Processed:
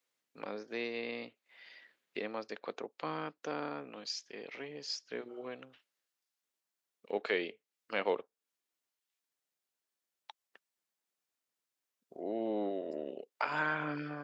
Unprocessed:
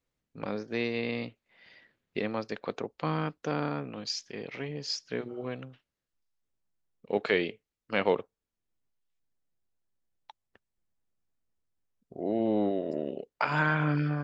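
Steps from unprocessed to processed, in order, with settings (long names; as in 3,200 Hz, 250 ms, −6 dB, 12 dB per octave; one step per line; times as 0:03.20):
high-pass filter 300 Hz 12 dB per octave
one half of a high-frequency compander encoder only
level −5.5 dB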